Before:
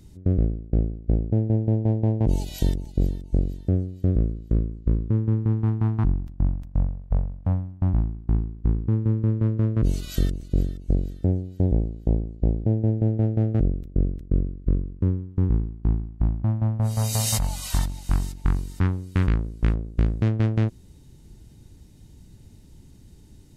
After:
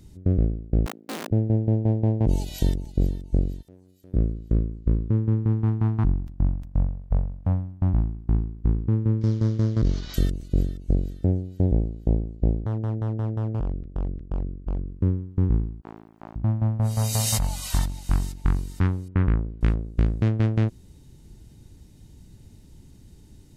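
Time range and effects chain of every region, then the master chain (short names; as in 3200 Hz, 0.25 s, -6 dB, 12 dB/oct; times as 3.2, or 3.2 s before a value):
0.86–1.31 wrapped overs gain 25.5 dB + HPF 230 Hz 24 dB/oct + mismatched tape noise reduction decoder only
3.62–4.14 compressor 16:1, threshold -29 dBFS + gate -32 dBFS, range -11 dB + RIAA curve recording
9.21–10.14 CVSD 32 kbps + bell 2600 Hz -8 dB 0.23 oct
12.6–14.89 LPF 2100 Hz + hard clip -20 dBFS + compressor 1.5:1, threshold -29 dBFS
15.81–16.36 HPF 600 Hz + sustainer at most 62 dB/s
19.08–19.61 LPF 1800 Hz + low-pass opened by the level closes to 1100 Hz, open at -17.5 dBFS
whole clip: dry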